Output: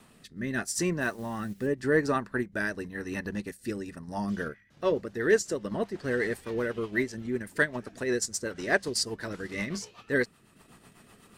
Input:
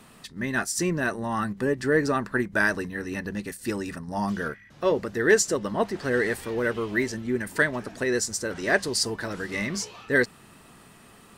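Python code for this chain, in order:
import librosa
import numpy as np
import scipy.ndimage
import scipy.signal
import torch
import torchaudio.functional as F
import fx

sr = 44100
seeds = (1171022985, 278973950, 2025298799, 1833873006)

y = fx.dmg_noise_colour(x, sr, seeds[0], colour='white', level_db=-51.0, at=(1.0, 1.66), fade=0.02)
y = fx.rotary_switch(y, sr, hz=0.85, then_hz=8.0, switch_at_s=3.86)
y = fx.transient(y, sr, attack_db=-1, sustain_db=-6)
y = y * 10.0 ** (-1.5 / 20.0)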